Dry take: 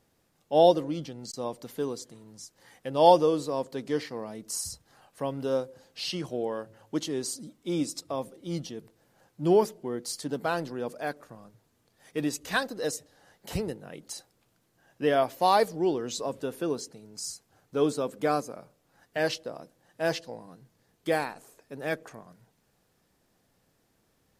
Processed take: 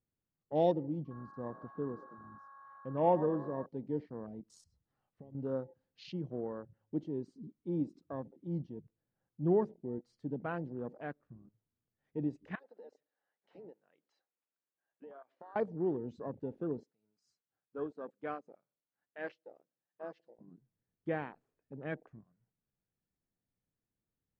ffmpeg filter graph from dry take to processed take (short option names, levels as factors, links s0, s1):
-filter_complex "[0:a]asettb=1/sr,asplit=3[s0][s1][s2];[s0]atrim=end=1.054[s3];[s1]atrim=start=1.05:end=3.66,asetpts=PTS-STARTPTS,afade=t=in:d=0.004:c=qsin,afade=t=out:st=2.606:d=0.004:c=qsin,highshelf=f=5000:g=-11,aeval=exprs='val(0)+0.00891*sin(2*PI*1100*n/s)':c=same,asplit=6[s4][s5][s6][s7][s8][s9];[s5]adelay=110,afreqshift=49,volume=0.158[s10];[s6]adelay=220,afreqshift=98,volume=0.0902[s11];[s7]adelay=330,afreqshift=147,volume=0.0513[s12];[s8]adelay=440,afreqshift=196,volume=0.0295[s13];[s9]adelay=550,afreqshift=245,volume=0.0168[s14];[s4][s10][s11][s12][s13][s14]amix=inputs=6:normalize=0,atrim=end_sample=115101[s15];[s2]atrim=start=3.656[s16];[s3][s15]acrossfade=d=0.004:c1=hsin:c2=qsin[s17];[s17][s16]acrossfade=d=0.004:c1=qsin:c2=hsin,asettb=1/sr,asplit=3[s18][s19][s20];[s18]atrim=end=4.644[s21];[s19]atrim=start=4.64:end=5.35,asetpts=PTS-STARTPTS,afade=t=in:d=0.004:c=qsin,afade=t=out:st=0.706:d=0.004:c=qsin,acompressor=threshold=0.00891:ratio=12:attack=3.2:release=140:knee=1:detection=peak,bandreject=f=1600:w=12[s22];[s20]atrim=start=5.346[s23];[s21][s22]acrossfade=d=0.004:c1=hsin:c2=qsin[s24];[s24][s23]acrossfade=d=0.004:c1=qsin:c2=hsin,asettb=1/sr,asplit=3[s25][s26][s27];[s25]atrim=end=12.554[s28];[s26]atrim=start=12.55:end=15.56,asetpts=PTS-STARTPTS,afade=t=in:d=0.004:c=qsin,afade=t=out:st=3.006:d=0.004:c=qsin,highpass=550,lowpass=4900,acompressor=threshold=0.0141:ratio=16:attack=3.2:release=140:knee=1:detection=peak[s29];[s27]atrim=start=15.556[s30];[s28][s29]acrossfade=d=0.004:c1=hsin:c2=qsin[s31];[s31][s30]acrossfade=d=0.004:c1=qsin:c2=hsin,asettb=1/sr,asplit=3[s32][s33][s34];[s32]atrim=end=16.834[s35];[s33]atrim=start=16.83:end=20.39,asetpts=PTS-STARTPTS,afade=t=in:d=0.004:c=qsin,afade=t=out:st=3.556:d=0.004:c=qsin,highpass=f=640:p=1,tremolo=f=4.1:d=0.52[s36];[s34]atrim=start=20.386[s37];[s35][s36]acrossfade=d=0.004:c1=hsin:c2=qsin[s38];[s38][s37]acrossfade=d=0.004:c1=qsin:c2=hsin,afwtdn=0.0141,lowpass=1600,equalizer=f=750:t=o:w=2.7:g=-11"